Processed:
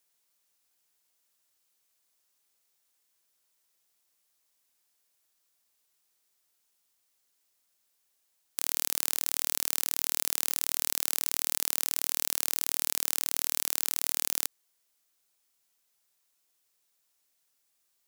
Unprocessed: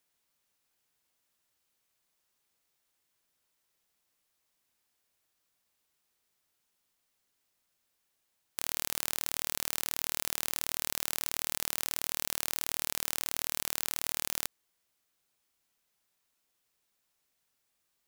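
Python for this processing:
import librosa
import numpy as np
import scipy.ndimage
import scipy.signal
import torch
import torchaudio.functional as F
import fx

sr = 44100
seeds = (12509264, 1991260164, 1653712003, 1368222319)

y = fx.bass_treble(x, sr, bass_db=-6, treble_db=6)
y = F.gain(torch.from_numpy(y), -1.0).numpy()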